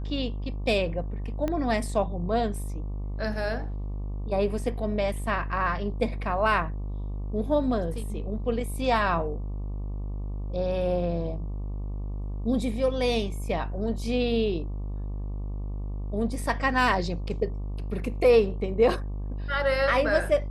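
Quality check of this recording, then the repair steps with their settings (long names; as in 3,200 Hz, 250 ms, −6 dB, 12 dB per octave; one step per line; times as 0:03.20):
mains buzz 50 Hz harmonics 24 −32 dBFS
0:01.48: click −17 dBFS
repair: click removal
hum removal 50 Hz, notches 24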